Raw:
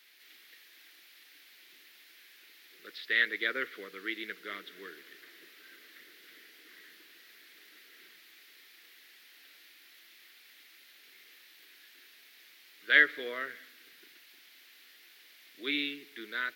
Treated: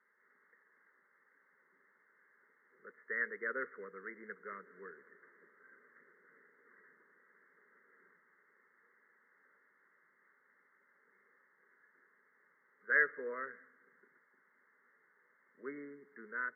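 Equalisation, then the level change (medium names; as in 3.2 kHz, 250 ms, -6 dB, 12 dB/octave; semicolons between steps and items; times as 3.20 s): brick-wall FIR low-pass 2.2 kHz; static phaser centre 470 Hz, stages 8; -1.0 dB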